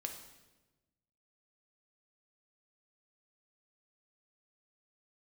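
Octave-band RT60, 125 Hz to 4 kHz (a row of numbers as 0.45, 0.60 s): 1.6, 1.5, 1.3, 1.0, 1.0, 0.95 s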